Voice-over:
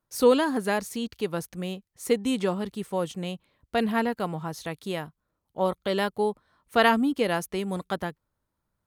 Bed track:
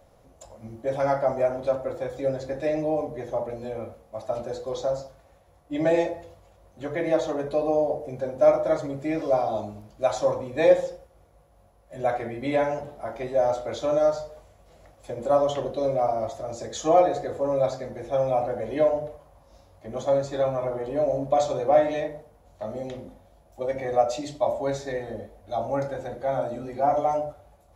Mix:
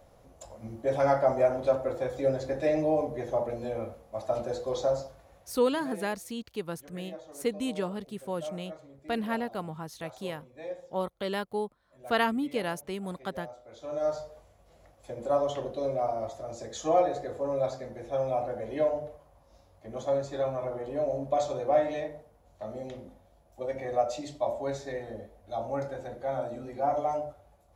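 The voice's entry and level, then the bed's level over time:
5.35 s, -6.0 dB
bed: 5.46 s -0.5 dB
5.86 s -21 dB
13.64 s -21 dB
14.12 s -5.5 dB

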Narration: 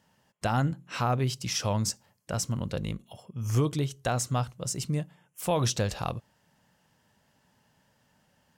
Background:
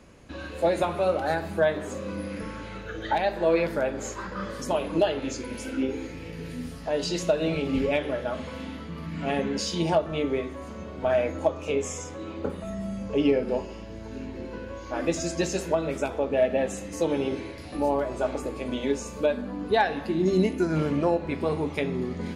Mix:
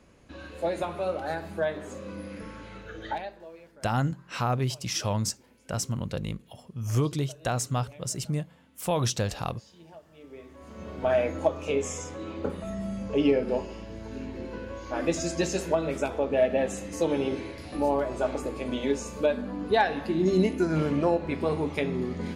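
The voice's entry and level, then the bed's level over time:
3.40 s, 0.0 dB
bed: 3.11 s -5.5 dB
3.53 s -26 dB
10.12 s -26 dB
10.89 s -0.5 dB

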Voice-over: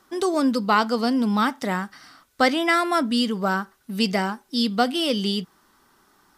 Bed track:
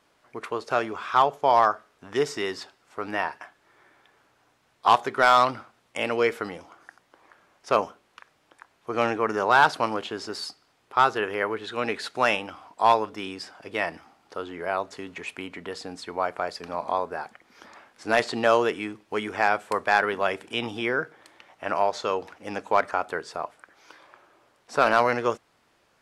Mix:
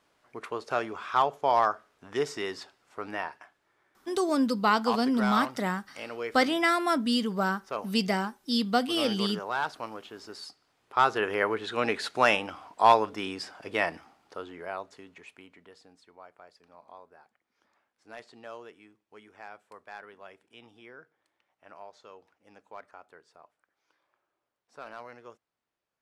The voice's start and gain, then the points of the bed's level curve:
3.95 s, -4.5 dB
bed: 2.96 s -4.5 dB
3.86 s -12.5 dB
10.06 s -12.5 dB
11.33 s 0 dB
13.82 s 0 dB
16.22 s -23.5 dB

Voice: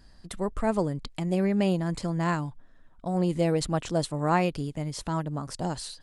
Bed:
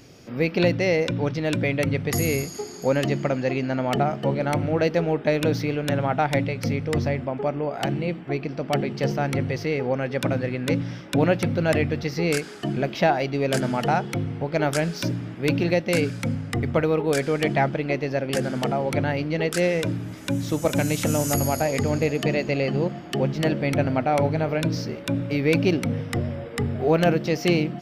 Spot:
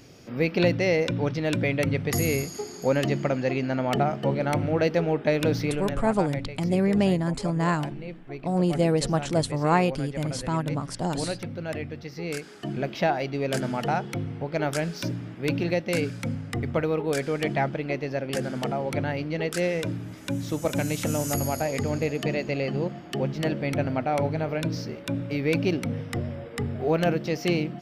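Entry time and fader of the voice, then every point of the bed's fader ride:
5.40 s, +2.5 dB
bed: 5.72 s -1.5 dB
6.02 s -11 dB
12.09 s -11 dB
12.83 s -4 dB

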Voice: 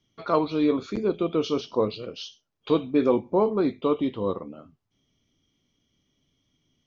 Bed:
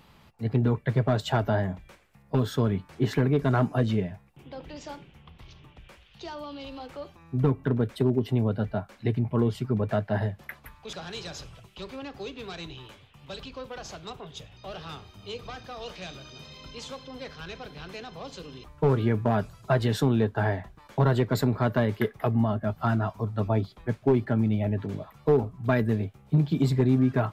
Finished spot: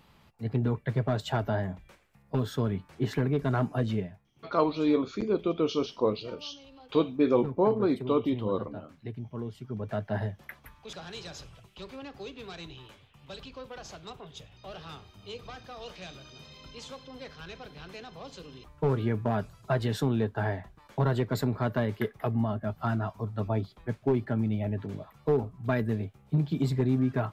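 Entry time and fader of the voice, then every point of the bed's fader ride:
4.25 s, -2.5 dB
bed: 3.99 s -4 dB
4.23 s -12.5 dB
9.59 s -12.5 dB
10.07 s -4 dB

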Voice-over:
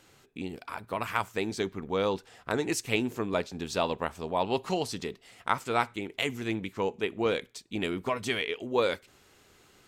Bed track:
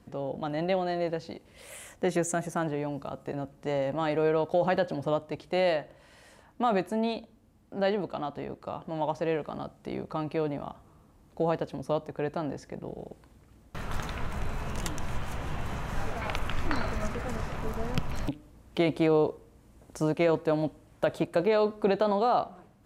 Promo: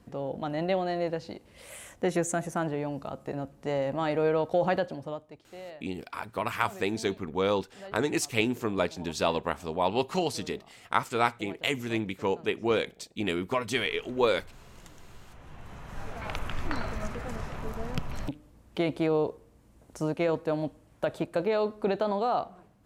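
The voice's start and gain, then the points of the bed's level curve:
5.45 s, +1.5 dB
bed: 4.72 s 0 dB
5.56 s -18 dB
15.17 s -18 dB
16.33 s -2.5 dB

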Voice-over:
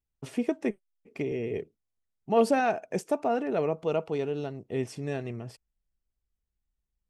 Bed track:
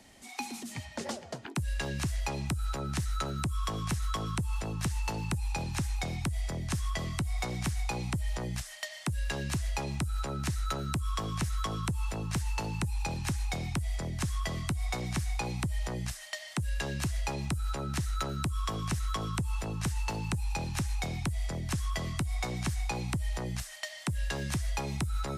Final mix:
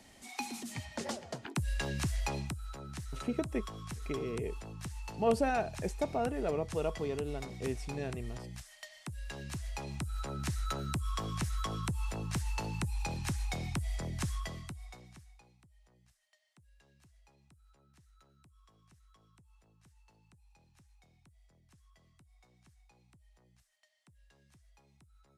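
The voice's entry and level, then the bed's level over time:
2.90 s, -6.0 dB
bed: 2.37 s -1.5 dB
2.61 s -10.5 dB
9.14 s -10.5 dB
10.53 s -3 dB
14.3 s -3 dB
15.59 s -32.5 dB

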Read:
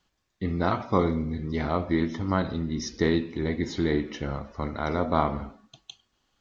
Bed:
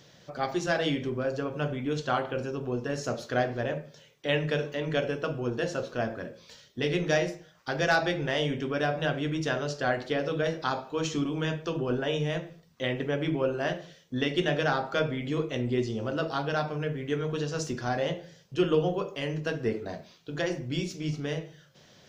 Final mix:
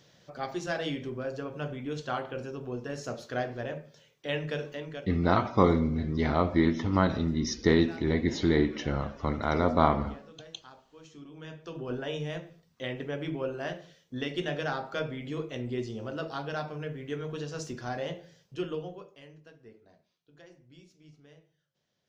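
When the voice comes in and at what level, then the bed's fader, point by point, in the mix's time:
4.65 s, +1.0 dB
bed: 4.75 s -5 dB
5.25 s -22.5 dB
11.03 s -22.5 dB
11.93 s -5.5 dB
18.44 s -5.5 dB
19.53 s -24 dB

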